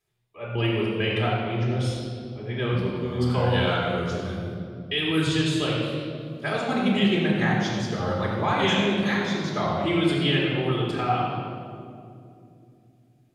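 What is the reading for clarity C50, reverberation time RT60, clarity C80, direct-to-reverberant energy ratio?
-0.5 dB, 2.6 s, 0.5 dB, -5.0 dB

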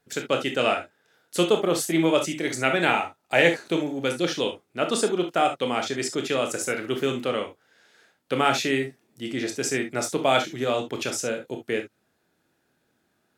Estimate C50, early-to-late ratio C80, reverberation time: 10.5 dB, 50.0 dB, no single decay rate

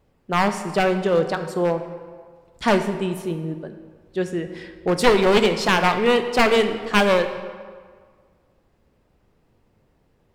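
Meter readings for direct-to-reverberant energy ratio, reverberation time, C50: 8.0 dB, 1.7 s, 9.5 dB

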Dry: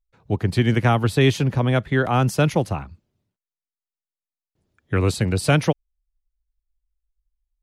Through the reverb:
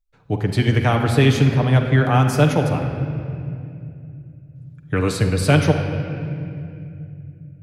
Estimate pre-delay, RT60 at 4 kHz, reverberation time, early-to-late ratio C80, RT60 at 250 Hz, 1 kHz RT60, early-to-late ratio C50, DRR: 7 ms, 1.8 s, 2.6 s, 6.5 dB, 4.4 s, 2.2 s, 5.5 dB, 2.5 dB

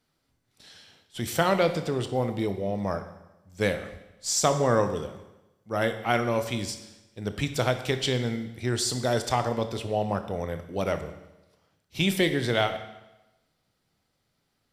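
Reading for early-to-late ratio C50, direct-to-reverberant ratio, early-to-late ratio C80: 10.5 dB, 8.5 dB, 12.5 dB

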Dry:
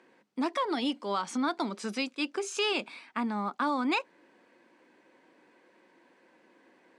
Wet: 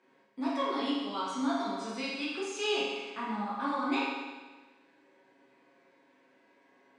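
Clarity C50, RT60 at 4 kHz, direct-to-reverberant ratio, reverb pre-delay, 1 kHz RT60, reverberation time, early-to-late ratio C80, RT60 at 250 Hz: -1.5 dB, 1.3 s, -9.0 dB, 7 ms, 1.3 s, 1.3 s, 1.5 dB, 1.3 s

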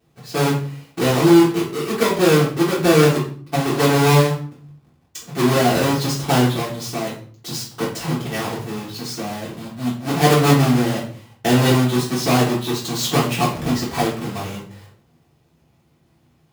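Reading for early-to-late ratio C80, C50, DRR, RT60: 10.5 dB, 5.5 dB, -7.5 dB, 0.50 s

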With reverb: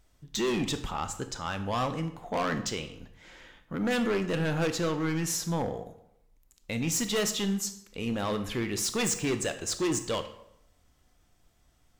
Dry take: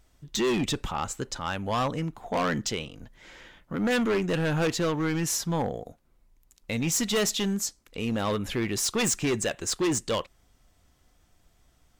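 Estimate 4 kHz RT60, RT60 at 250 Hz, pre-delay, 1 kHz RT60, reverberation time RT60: 0.60 s, 0.80 s, 22 ms, 0.75 s, 0.75 s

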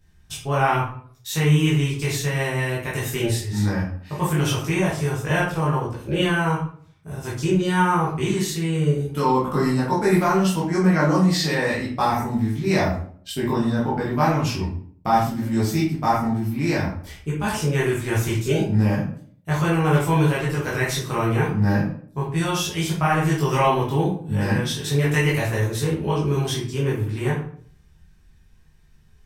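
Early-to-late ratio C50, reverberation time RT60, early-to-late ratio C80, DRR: 3.5 dB, 0.55 s, 8.5 dB, -7.0 dB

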